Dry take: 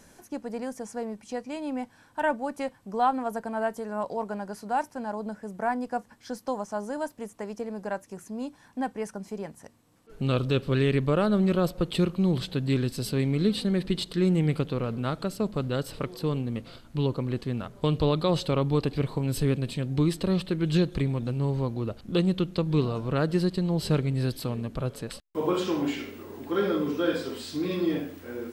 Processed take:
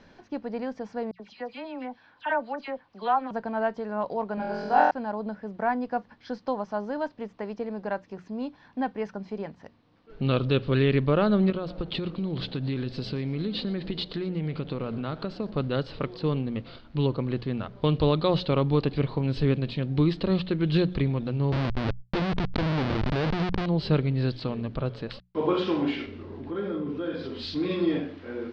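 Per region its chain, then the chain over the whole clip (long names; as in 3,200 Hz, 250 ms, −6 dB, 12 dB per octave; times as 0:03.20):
0:01.11–0:03.31: low-pass filter 5,900 Hz + low-shelf EQ 370 Hz −11 dB + all-pass dispersion lows, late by 87 ms, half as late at 2,300 Hz
0:04.35–0:04.91: double-tracking delay 18 ms −11 dB + flutter between parallel walls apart 4 metres, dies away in 1.2 s
0:11.50–0:15.53: downward compressor 12 to 1, threshold −26 dBFS + echo with shifted repeats 118 ms, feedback 48%, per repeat +130 Hz, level −20.5 dB
0:21.52–0:23.66: comparator with hysteresis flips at −29.5 dBFS + background raised ahead of every attack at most 55 dB per second
0:26.06–0:27.55: low-shelf EQ 280 Hz +9.5 dB + downward compressor 3 to 1, threshold −32 dBFS + multiband upward and downward expander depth 70%
whole clip: Butterworth low-pass 4,600 Hz 36 dB per octave; mains-hum notches 60/120/180 Hz; level +1.5 dB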